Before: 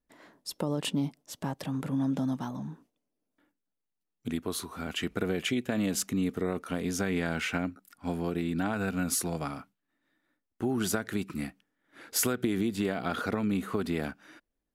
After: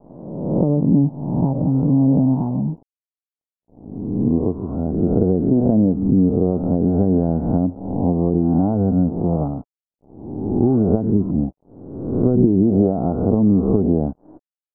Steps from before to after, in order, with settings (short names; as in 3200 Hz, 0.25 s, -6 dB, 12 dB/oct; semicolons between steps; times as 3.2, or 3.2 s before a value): spectral swells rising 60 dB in 1.04 s; in parallel at +2.5 dB: compressor 10:1, threshold -43 dBFS, peak gain reduction 22 dB; on the sum: tilt -3 dB/oct; crossover distortion -46 dBFS; gate with hold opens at -52 dBFS; steep low-pass 850 Hz 36 dB/oct; gain +6 dB